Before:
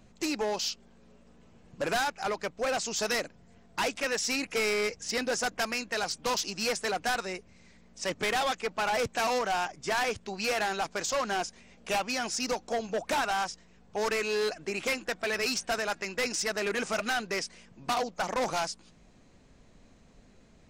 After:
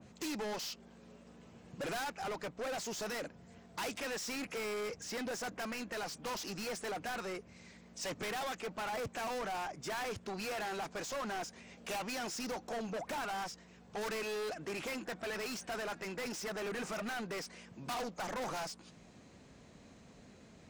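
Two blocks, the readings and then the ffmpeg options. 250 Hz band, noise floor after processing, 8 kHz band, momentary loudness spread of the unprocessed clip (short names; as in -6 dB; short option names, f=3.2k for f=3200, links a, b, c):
-5.5 dB, -59 dBFS, -10.0 dB, 6 LU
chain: -af "highpass=80,asoftclip=type=tanh:threshold=-39dB,adynamicequalizer=threshold=0.00178:dfrequency=2300:dqfactor=0.7:tfrequency=2300:tqfactor=0.7:attack=5:release=100:ratio=0.375:range=3:mode=cutabove:tftype=highshelf,volume=2.5dB"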